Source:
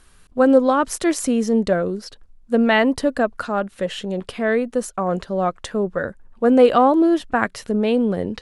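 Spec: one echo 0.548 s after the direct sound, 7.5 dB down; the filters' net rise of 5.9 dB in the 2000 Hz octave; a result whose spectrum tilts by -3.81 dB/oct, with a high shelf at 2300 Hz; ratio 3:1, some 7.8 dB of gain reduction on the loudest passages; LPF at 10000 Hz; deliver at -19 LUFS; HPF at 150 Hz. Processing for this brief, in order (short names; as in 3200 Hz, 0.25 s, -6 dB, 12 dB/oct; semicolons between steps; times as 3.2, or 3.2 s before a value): HPF 150 Hz; LPF 10000 Hz; bell 2000 Hz +8.5 dB; high shelf 2300 Hz -3 dB; compressor 3:1, threshold -19 dBFS; echo 0.548 s -7.5 dB; gain +4 dB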